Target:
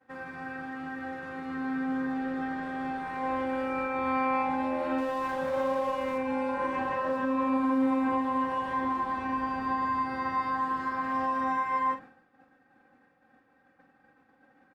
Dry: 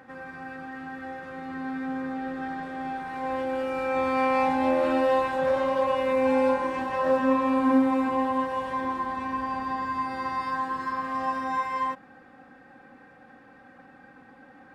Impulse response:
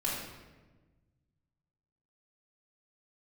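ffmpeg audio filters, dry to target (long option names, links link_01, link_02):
-filter_complex "[0:a]bandreject=frequency=50:width_type=h:width=6,bandreject=frequency=100:width_type=h:width=6,bandreject=frequency=150:width_type=h:width=6,bandreject=frequency=200:width_type=h:width=6,bandreject=frequency=250:width_type=h:width=6,agate=range=-33dB:threshold=-42dB:ratio=3:detection=peak,acrossover=split=2700[link_01][link_02];[link_01]alimiter=limit=-21.5dB:level=0:latency=1:release=117[link_03];[link_02]acompressor=threshold=-58dB:ratio=6[link_04];[link_03][link_04]amix=inputs=2:normalize=0,asettb=1/sr,asplit=3[link_05][link_06][link_07];[link_05]atrim=end=4.984[link_08];[link_06]atrim=start=4.98:end=6.18,asetpts=PTS-STARTPTS,afade=type=in:duration=0.004:curve=qsin,afade=type=out:start_time=1.196:duration=0.004:curve=qsin,aeval=exprs='sgn(val(0))*max(abs(val(0))-0.00398,0)':channel_layout=same[link_09];[link_07]atrim=start=6.176[link_10];[link_08][link_09]acrossfade=duration=0.004:curve1=hsin:curve2=qsin[link_11];[link_11][link_10]acrossfade=duration=0.004:curve1=qsin:curve2=hsin,asplit=2[link_12][link_13];[link_13]adelay=45,volume=-8dB[link_14];[link_12][link_14]amix=inputs=2:normalize=0"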